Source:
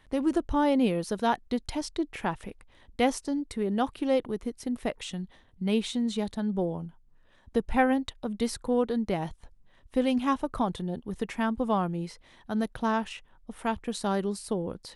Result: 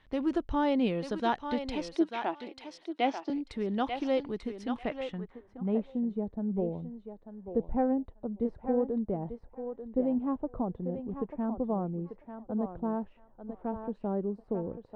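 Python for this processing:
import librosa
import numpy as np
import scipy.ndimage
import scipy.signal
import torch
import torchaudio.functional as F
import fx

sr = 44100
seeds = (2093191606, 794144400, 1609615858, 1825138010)

y = fx.cabinet(x, sr, low_hz=290.0, low_slope=24, high_hz=5300.0, hz=(320.0, 470.0, 680.0, 1100.0, 1700.0, 4100.0), db=(9, -7, 7, -4, -6, -4), at=(1.95, 3.3))
y = fx.echo_thinned(y, sr, ms=891, feedback_pct=18, hz=520.0, wet_db=-5.5)
y = fx.filter_sweep_lowpass(y, sr, from_hz=4000.0, to_hz=580.0, start_s=4.6, end_s=6.04, q=0.97)
y = F.gain(torch.from_numpy(y), -3.5).numpy()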